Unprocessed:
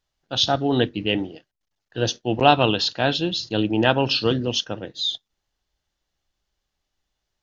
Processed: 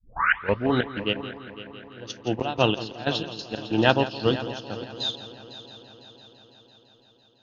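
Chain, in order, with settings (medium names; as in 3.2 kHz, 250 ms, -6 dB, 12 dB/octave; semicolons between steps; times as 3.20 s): tape start-up on the opening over 0.70 s; trance gate ".x.xx.x..x" 93 bpm -12 dB; on a send: multi-head delay 168 ms, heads first and third, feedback 67%, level -11.5 dB; on the sum: upward expansion 1.5:1, over -32 dBFS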